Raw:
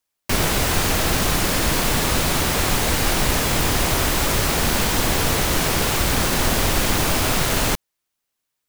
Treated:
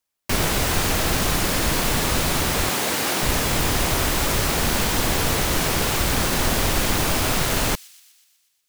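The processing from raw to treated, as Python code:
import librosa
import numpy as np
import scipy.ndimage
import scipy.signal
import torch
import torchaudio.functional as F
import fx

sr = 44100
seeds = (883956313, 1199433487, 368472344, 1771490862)

p1 = fx.highpass(x, sr, hz=210.0, slope=12, at=(2.69, 3.23))
p2 = p1 + fx.echo_wet_highpass(p1, sr, ms=122, feedback_pct=62, hz=3500.0, wet_db=-19.5, dry=0)
y = F.gain(torch.from_numpy(p2), -1.5).numpy()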